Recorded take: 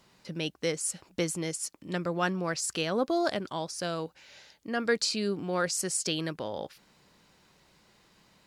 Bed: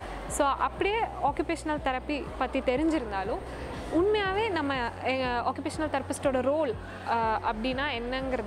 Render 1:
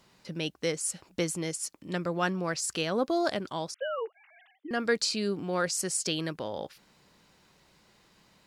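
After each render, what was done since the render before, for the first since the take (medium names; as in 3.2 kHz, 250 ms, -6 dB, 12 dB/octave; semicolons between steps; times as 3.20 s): 3.74–4.71 s: formants replaced by sine waves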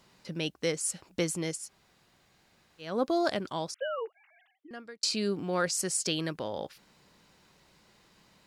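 1.62–2.90 s: room tone, crossfade 0.24 s; 3.80–5.03 s: fade out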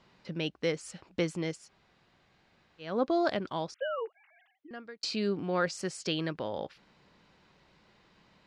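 low-pass 3.8 kHz 12 dB/octave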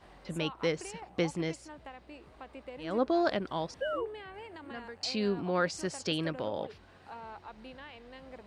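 add bed -18.5 dB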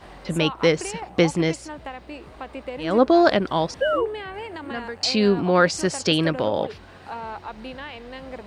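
trim +12 dB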